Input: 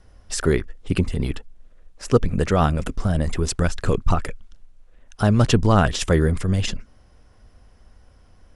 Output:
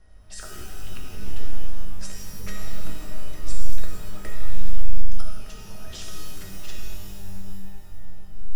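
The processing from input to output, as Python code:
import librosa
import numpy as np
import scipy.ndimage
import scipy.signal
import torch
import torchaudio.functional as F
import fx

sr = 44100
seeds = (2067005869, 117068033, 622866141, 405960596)

y = fx.over_compress(x, sr, threshold_db=-30.0, ratio=-1.0)
y = fx.comb_fb(y, sr, f0_hz=630.0, decay_s=0.49, harmonics='all', damping=0.0, mix_pct=90)
y = fx.rev_shimmer(y, sr, seeds[0], rt60_s=2.2, semitones=12, shimmer_db=-2, drr_db=-1.5)
y = y * 10.0 ** (3.5 / 20.0)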